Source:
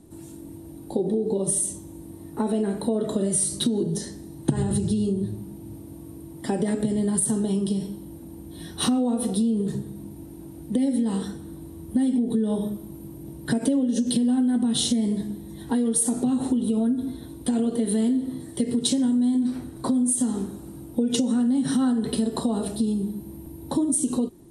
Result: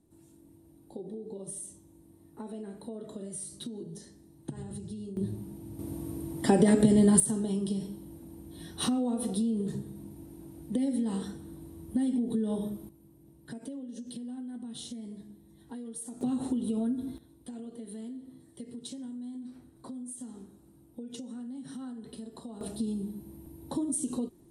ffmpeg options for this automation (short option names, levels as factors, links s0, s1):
-af "asetnsamples=n=441:p=0,asendcmd='5.17 volume volume -4.5dB;5.79 volume volume 3dB;7.2 volume volume -6.5dB;12.89 volume volume -18.5dB;16.21 volume volume -7.5dB;17.18 volume volume -19dB;22.61 volume volume -8.5dB',volume=0.15"